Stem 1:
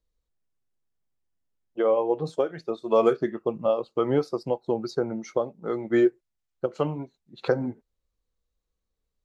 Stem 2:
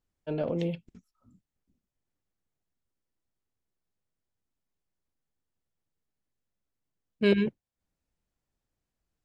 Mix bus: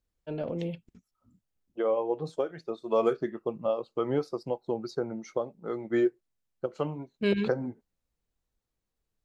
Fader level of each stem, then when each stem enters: -5.0, -3.0 dB; 0.00, 0.00 s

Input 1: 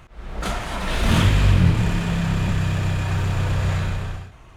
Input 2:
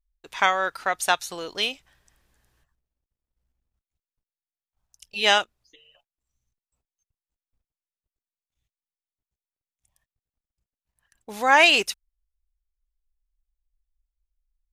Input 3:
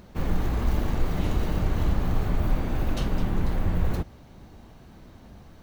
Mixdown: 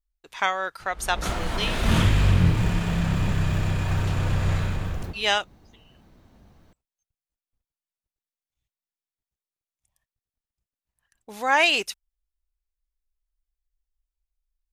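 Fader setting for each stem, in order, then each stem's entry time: -3.0, -3.5, -7.0 dB; 0.80, 0.00, 1.10 s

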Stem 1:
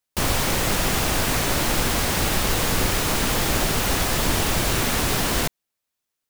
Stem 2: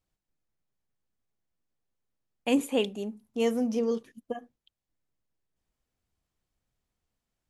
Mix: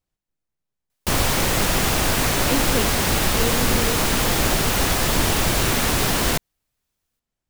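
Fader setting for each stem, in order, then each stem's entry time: +2.0, -0.5 dB; 0.90, 0.00 s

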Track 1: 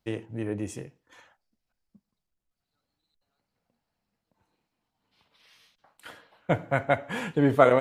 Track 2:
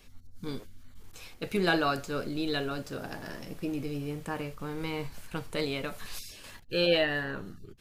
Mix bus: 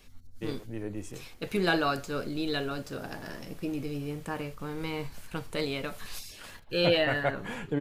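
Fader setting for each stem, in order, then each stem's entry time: -5.5, 0.0 dB; 0.35, 0.00 s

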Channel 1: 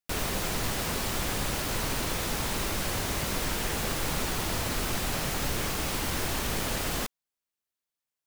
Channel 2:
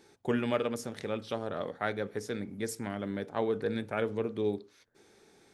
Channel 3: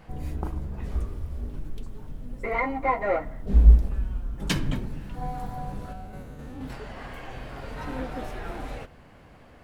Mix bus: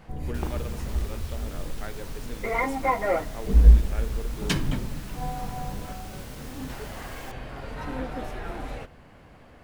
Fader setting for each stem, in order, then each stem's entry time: -14.0, -8.0, +0.5 dB; 0.25, 0.00, 0.00 s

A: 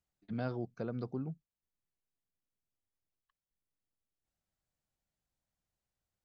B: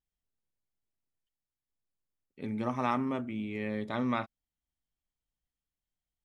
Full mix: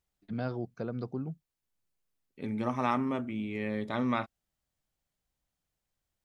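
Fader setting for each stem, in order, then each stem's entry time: +2.5, +1.0 dB; 0.00, 0.00 s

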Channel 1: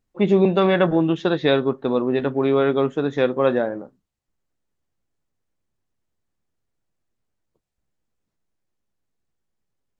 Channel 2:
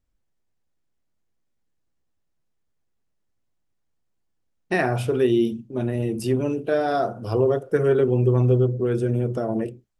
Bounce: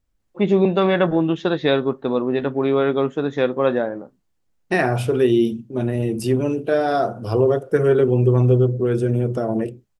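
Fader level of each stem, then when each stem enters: 0.0, +3.0 dB; 0.20, 0.00 s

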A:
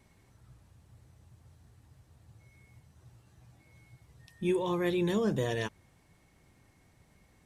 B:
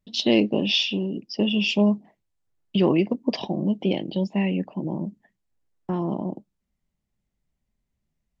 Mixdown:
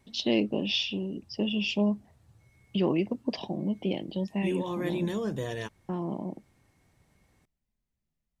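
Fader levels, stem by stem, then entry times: -2.5, -6.5 dB; 0.00, 0.00 s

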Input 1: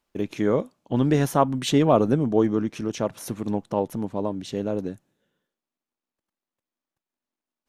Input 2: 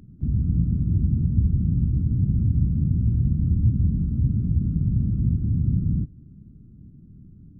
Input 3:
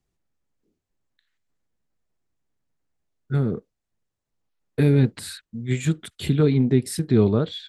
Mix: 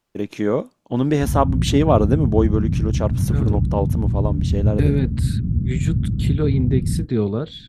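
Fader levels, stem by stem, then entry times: +2.0, +1.5, -2.5 dB; 0.00, 1.00, 0.00 s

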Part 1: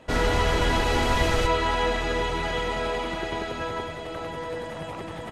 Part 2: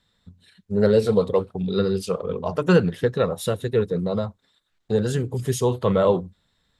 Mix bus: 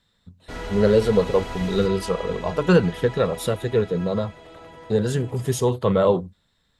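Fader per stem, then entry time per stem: -10.0, +0.5 dB; 0.40, 0.00 s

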